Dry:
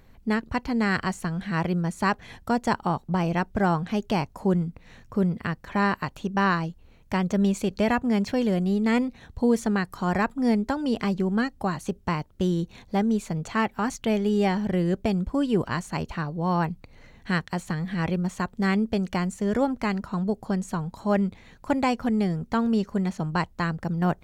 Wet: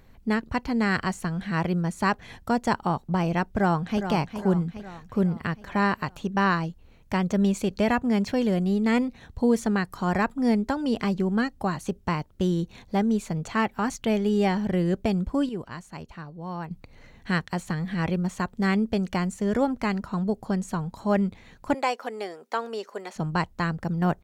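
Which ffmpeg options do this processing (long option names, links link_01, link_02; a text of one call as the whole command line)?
ffmpeg -i in.wav -filter_complex "[0:a]asplit=2[link_01][link_02];[link_02]afade=type=in:start_time=3.5:duration=0.01,afade=type=out:start_time=4.05:duration=0.01,aecho=0:1:410|820|1230|1640|2050|2460:0.354813|0.195147|0.107331|0.0590321|0.0324676|0.0178572[link_03];[link_01][link_03]amix=inputs=2:normalize=0,asettb=1/sr,asplit=3[link_04][link_05][link_06];[link_04]atrim=end=21.744[link_07];[link_05]atrim=start=21.74:end=23.16,asetpts=PTS-STARTPTS,afade=type=in:duration=0.004:curve=qsin,afade=type=out:start_time=1.416:duration=0.004:curve=qsin,highpass=frequency=400:width=0.5412,highpass=frequency=400:width=1.3066[link_08];[link_06]atrim=start=23.156[link_09];[link_07][link_08]acrossfade=duration=0.004:curve1=hsin:curve2=qsin[link_10];[link_10][link_09]acrossfade=duration=0.004:curve1=qsin:curve2=hsin,asplit=3[link_11][link_12][link_13];[link_11]atrim=end=15.492[link_14];[link_12]atrim=start=15.488:end=16.712,asetpts=PTS-STARTPTS,volume=-10dB[link_15];[link_13]atrim=start=16.708[link_16];[link_14][link_15]acrossfade=duration=0.004:curve1=hsin:curve2=hsin[link_17];[link_17][link_16]acrossfade=duration=0.004:curve1=hsin:curve2=hsin" out.wav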